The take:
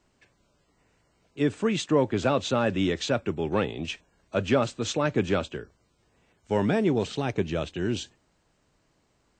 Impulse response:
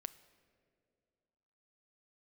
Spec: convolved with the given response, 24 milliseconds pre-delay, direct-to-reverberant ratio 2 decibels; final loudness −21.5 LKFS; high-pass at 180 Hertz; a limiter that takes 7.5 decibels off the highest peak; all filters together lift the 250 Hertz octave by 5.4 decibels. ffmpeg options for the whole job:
-filter_complex "[0:a]highpass=180,equalizer=frequency=250:width_type=o:gain=8,alimiter=limit=-14.5dB:level=0:latency=1,asplit=2[link_01][link_02];[1:a]atrim=start_sample=2205,adelay=24[link_03];[link_02][link_03]afir=irnorm=-1:irlink=0,volume=2dB[link_04];[link_01][link_04]amix=inputs=2:normalize=0,volume=2.5dB"

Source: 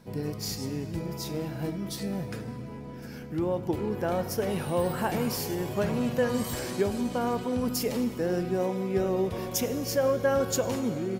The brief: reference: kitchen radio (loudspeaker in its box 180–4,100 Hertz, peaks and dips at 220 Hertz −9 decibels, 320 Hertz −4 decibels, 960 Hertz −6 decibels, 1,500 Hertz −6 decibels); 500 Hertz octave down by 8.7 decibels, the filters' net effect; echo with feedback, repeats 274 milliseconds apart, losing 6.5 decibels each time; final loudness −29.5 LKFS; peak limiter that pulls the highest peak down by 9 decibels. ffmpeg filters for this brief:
ffmpeg -i in.wav -af "equalizer=frequency=500:width_type=o:gain=-9,alimiter=level_in=1.5dB:limit=-24dB:level=0:latency=1,volume=-1.5dB,highpass=180,equalizer=frequency=220:width_type=q:width=4:gain=-9,equalizer=frequency=320:width_type=q:width=4:gain=-4,equalizer=frequency=960:width_type=q:width=4:gain=-6,equalizer=frequency=1500:width_type=q:width=4:gain=-6,lowpass=frequency=4100:width=0.5412,lowpass=frequency=4100:width=1.3066,aecho=1:1:274|548|822|1096|1370|1644:0.473|0.222|0.105|0.0491|0.0231|0.0109,volume=9.5dB" out.wav

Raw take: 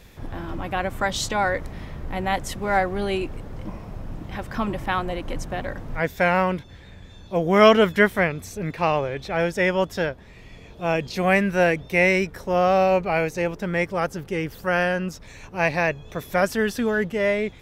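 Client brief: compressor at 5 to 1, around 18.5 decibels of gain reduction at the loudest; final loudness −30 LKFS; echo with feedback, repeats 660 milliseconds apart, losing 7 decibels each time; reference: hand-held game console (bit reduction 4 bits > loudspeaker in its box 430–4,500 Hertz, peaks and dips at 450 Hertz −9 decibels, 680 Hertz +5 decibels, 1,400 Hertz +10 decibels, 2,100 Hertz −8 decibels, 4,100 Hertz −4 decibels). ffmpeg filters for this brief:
ffmpeg -i in.wav -af "acompressor=threshold=-30dB:ratio=5,aecho=1:1:660|1320|1980|2640|3300:0.447|0.201|0.0905|0.0407|0.0183,acrusher=bits=3:mix=0:aa=0.000001,highpass=430,equalizer=frequency=450:width_type=q:width=4:gain=-9,equalizer=frequency=680:width_type=q:width=4:gain=5,equalizer=frequency=1400:width_type=q:width=4:gain=10,equalizer=frequency=2100:width_type=q:width=4:gain=-8,equalizer=frequency=4100:width_type=q:width=4:gain=-4,lowpass=frequency=4500:width=0.5412,lowpass=frequency=4500:width=1.3066,volume=6.5dB" out.wav

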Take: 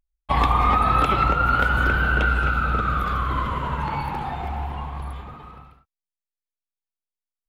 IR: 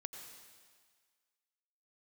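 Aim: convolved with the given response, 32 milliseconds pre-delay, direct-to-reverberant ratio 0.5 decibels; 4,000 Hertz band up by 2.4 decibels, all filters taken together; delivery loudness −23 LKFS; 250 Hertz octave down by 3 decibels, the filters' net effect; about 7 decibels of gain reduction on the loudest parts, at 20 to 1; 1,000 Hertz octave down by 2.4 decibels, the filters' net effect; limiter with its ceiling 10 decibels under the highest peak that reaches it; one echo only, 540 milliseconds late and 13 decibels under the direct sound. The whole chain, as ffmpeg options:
-filter_complex "[0:a]equalizer=frequency=250:width_type=o:gain=-4,equalizer=frequency=1000:width_type=o:gain=-3.5,equalizer=frequency=4000:width_type=o:gain=3.5,acompressor=threshold=-23dB:ratio=20,alimiter=level_in=1dB:limit=-24dB:level=0:latency=1,volume=-1dB,aecho=1:1:540:0.224,asplit=2[link_01][link_02];[1:a]atrim=start_sample=2205,adelay=32[link_03];[link_02][link_03]afir=irnorm=-1:irlink=0,volume=2.5dB[link_04];[link_01][link_04]amix=inputs=2:normalize=0,volume=7.5dB"

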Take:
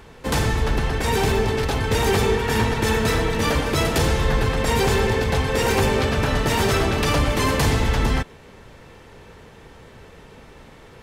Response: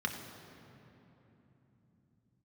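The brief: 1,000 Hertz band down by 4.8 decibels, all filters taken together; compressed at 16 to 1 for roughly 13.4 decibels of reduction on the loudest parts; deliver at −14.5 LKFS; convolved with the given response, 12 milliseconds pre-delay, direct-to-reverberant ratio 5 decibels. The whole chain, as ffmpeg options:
-filter_complex "[0:a]equalizer=frequency=1000:width_type=o:gain=-6,acompressor=threshold=-29dB:ratio=16,asplit=2[link_01][link_02];[1:a]atrim=start_sample=2205,adelay=12[link_03];[link_02][link_03]afir=irnorm=-1:irlink=0,volume=-10dB[link_04];[link_01][link_04]amix=inputs=2:normalize=0,volume=18dB"

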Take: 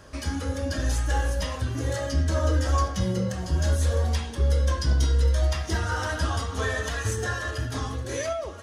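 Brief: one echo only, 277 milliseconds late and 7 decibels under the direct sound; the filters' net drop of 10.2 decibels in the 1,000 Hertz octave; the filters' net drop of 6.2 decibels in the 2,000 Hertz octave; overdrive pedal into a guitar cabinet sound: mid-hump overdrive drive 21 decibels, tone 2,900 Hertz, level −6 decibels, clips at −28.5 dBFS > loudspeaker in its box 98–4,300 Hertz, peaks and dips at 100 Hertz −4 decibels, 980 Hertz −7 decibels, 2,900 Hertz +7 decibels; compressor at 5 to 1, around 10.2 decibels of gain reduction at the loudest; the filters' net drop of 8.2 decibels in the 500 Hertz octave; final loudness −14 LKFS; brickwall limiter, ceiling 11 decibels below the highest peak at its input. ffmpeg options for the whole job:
ffmpeg -i in.wav -filter_complex "[0:a]equalizer=frequency=500:width_type=o:gain=-7.5,equalizer=frequency=1000:width_type=o:gain=-6,equalizer=frequency=2000:width_type=o:gain=-5.5,acompressor=threshold=-30dB:ratio=5,alimiter=level_in=8dB:limit=-24dB:level=0:latency=1,volume=-8dB,aecho=1:1:277:0.447,asplit=2[link_01][link_02];[link_02]highpass=frequency=720:poles=1,volume=21dB,asoftclip=type=tanh:threshold=-28.5dB[link_03];[link_01][link_03]amix=inputs=2:normalize=0,lowpass=frequency=2900:poles=1,volume=-6dB,highpass=98,equalizer=frequency=100:width_type=q:width=4:gain=-4,equalizer=frequency=980:width_type=q:width=4:gain=-7,equalizer=frequency=2900:width_type=q:width=4:gain=7,lowpass=frequency=4300:width=0.5412,lowpass=frequency=4300:width=1.3066,volume=25dB" out.wav

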